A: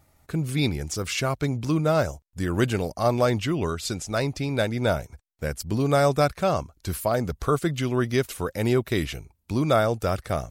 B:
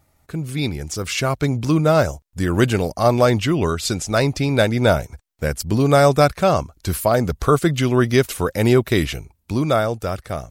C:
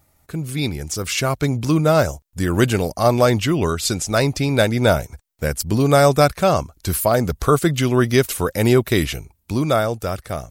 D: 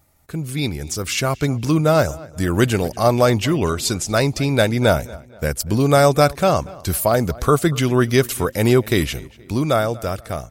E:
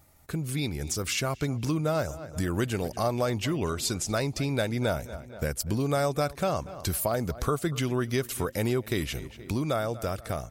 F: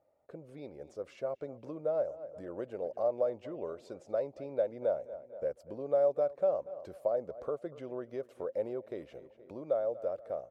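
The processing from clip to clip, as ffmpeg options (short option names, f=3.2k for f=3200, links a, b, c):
-af "dynaudnorm=f=110:g=21:m=10dB"
-af "highshelf=f=7.9k:g=7"
-filter_complex "[0:a]asplit=2[a][b];[b]adelay=238,lowpass=f=4.1k:p=1,volume=-21dB,asplit=2[c][d];[d]adelay=238,lowpass=f=4.1k:p=1,volume=0.4,asplit=2[e][f];[f]adelay=238,lowpass=f=4.1k:p=1,volume=0.4[g];[a][c][e][g]amix=inputs=4:normalize=0"
-af "acompressor=threshold=-30dB:ratio=2.5"
-af "bandpass=f=550:t=q:w=5.9:csg=0,volume=3dB"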